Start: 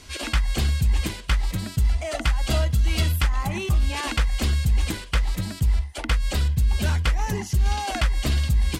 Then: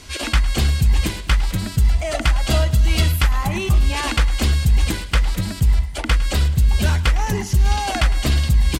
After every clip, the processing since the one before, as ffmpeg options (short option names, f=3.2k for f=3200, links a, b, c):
-af "aecho=1:1:106|212|318|424|530|636:0.141|0.0848|0.0509|0.0305|0.0183|0.011,volume=5dB"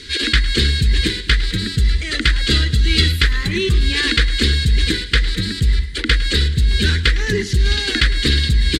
-af "firequalizer=gain_entry='entry(160,0);entry(250,4);entry(450,8);entry(650,-24);entry(1700,11);entry(2600,2);entry(3900,14);entry(5800,-1);entry(8600,0);entry(14000,-14)':delay=0.05:min_phase=1"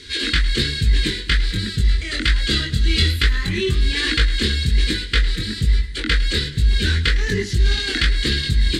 -af "flanger=delay=19.5:depth=4.7:speed=1.2"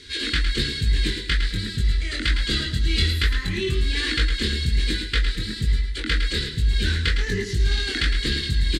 -af "aecho=1:1:109:0.376,volume=-4.5dB"